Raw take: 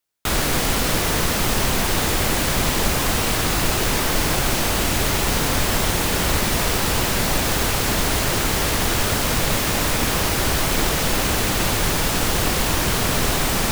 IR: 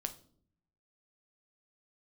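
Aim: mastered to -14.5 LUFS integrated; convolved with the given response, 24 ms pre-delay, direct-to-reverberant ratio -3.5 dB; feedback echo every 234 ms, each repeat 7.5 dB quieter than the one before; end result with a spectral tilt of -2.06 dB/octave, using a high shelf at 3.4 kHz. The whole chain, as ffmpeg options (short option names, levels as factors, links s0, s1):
-filter_complex "[0:a]highshelf=f=3400:g=7,aecho=1:1:234|468|702|936|1170:0.422|0.177|0.0744|0.0312|0.0131,asplit=2[s0][s1];[1:a]atrim=start_sample=2205,adelay=24[s2];[s1][s2]afir=irnorm=-1:irlink=0,volume=1.58[s3];[s0][s3]amix=inputs=2:normalize=0,volume=0.596"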